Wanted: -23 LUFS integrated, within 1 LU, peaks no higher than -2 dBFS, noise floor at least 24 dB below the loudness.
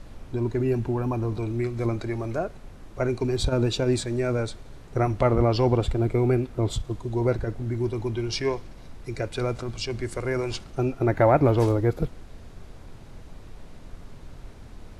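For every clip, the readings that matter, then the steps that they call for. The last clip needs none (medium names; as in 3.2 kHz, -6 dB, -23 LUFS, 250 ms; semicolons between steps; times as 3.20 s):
noise floor -45 dBFS; noise floor target -50 dBFS; loudness -26.0 LUFS; peak level -8.0 dBFS; loudness target -23.0 LUFS
-> noise print and reduce 6 dB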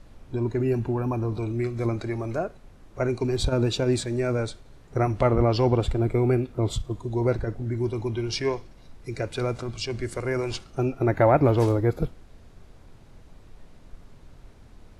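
noise floor -50 dBFS; loudness -26.0 LUFS; peak level -8.0 dBFS; loudness target -23.0 LUFS
-> trim +3 dB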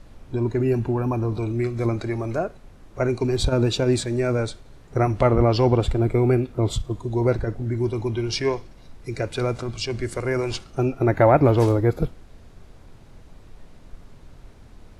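loudness -23.0 LUFS; peak level -5.0 dBFS; noise floor -47 dBFS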